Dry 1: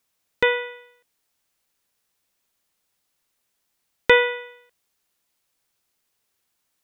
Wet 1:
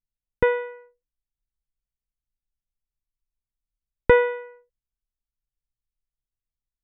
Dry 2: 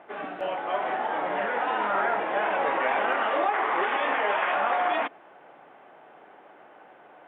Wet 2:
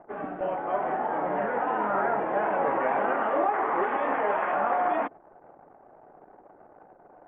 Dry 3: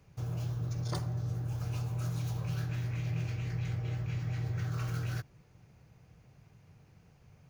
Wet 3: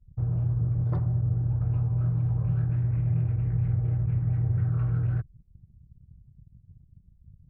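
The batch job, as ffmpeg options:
-af "lowpass=1500,anlmdn=0.00398,aemphasis=mode=reproduction:type=bsi"

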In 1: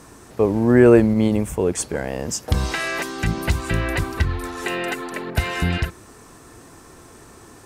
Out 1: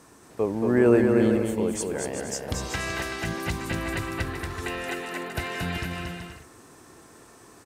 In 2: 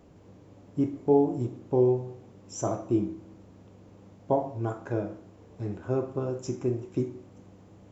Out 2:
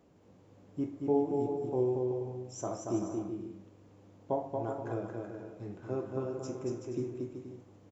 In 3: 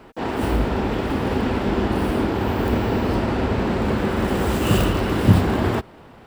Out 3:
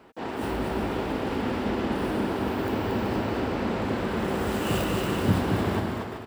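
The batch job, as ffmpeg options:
-af "lowshelf=f=78:g=-12,aecho=1:1:230|379.5|476.7|539.8|580.9:0.631|0.398|0.251|0.158|0.1,volume=0.447"

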